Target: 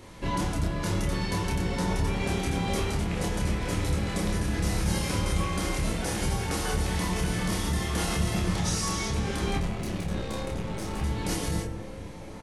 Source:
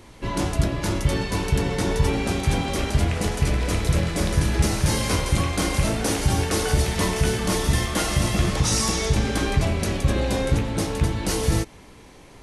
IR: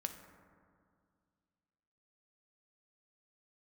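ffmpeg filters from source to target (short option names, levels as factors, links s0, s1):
-filter_complex "[0:a]alimiter=limit=0.112:level=0:latency=1:release=274,asettb=1/sr,asplit=3[s0][s1][s2];[s0]atrim=end=9.584[s3];[s1]atrim=start=9.58:end=11.02,asetpts=PTS-STARTPTS,afade=t=in:d=0.004:c=qsin,afade=t=out:st=1.436:d=0.004:c=qsin,aeval=exprs='(tanh(22.4*val(0)+0.75)-tanh(0.75))/22.4':c=same[s4];[s2]atrim=start=11.016[s5];[s3][s4]acrossfade=d=0.004:c1=hsin:c2=qsin[s6];[s6][s5]acrossfade=d=0.004:c1=qsin:c2=hsin,asplit=2[s7][s8];[s8]adelay=28,volume=0.668[s9];[s7][s9]amix=inputs=2:normalize=0,asplit=2[s10][s11];[s11]adelay=1458,volume=0.398,highshelf=f=4000:g=-32.8[s12];[s10][s12]amix=inputs=2:normalize=0[s13];[1:a]atrim=start_sample=2205,afade=t=out:st=0.32:d=0.01,atrim=end_sample=14553[s14];[s13][s14]afir=irnorm=-1:irlink=0"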